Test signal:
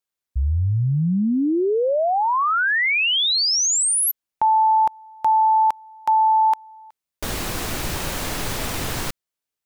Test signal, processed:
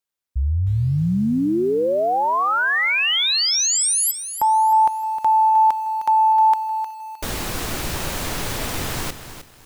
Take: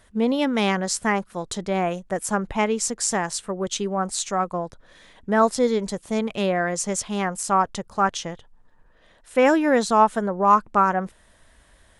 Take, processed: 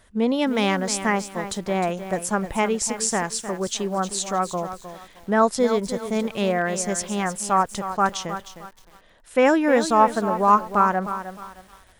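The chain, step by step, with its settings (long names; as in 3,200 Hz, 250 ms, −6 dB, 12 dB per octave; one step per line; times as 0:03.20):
feedback echo at a low word length 309 ms, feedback 35%, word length 7 bits, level −10.5 dB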